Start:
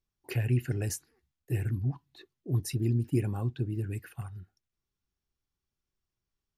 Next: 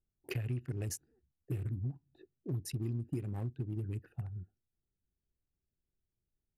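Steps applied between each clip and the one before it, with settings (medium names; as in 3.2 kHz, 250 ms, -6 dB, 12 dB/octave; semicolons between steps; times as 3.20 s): local Wiener filter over 41 samples; compression, threshold -35 dBFS, peak gain reduction 12.5 dB; trim +1 dB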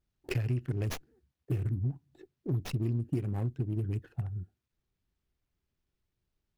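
sliding maximum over 5 samples; trim +5.5 dB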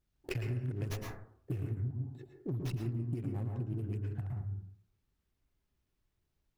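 plate-style reverb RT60 0.57 s, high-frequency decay 0.3×, pre-delay 100 ms, DRR 2.5 dB; compression 3:1, threshold -35 dBFS, peak gain reduction 9.5 dB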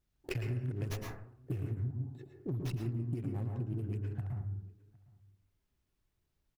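echo from a far wall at 130 m, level -24 dB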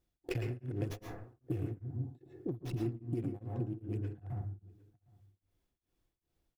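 small resonant body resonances 330/500/710/3400 Hz, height 9 dB, ringing for 45 ms; tremolo of two beating tones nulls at 2.5 Hz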